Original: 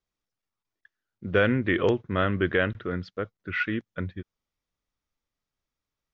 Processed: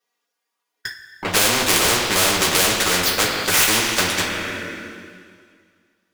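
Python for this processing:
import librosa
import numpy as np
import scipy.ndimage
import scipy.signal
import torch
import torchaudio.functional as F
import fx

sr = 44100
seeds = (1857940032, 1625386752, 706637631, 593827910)

y = fx.env_flanger(x, sr, rest_ms=4.2, full_db=-24.0)
y = scipy.signal.sosfilt(scipy.signal.butter(2, 450.0, 'highpass', fs=sr, output='sos'), y)
y = fx.leveller(y, sr, passes=5)
y = fx.rev_double_slope(y, sr, seeds[0], early_s=0.24, late_s=2.0, knee_db=-18, drr_db=-4.0)
y = fx.spectral_comp(y, sr, ratio=4.0)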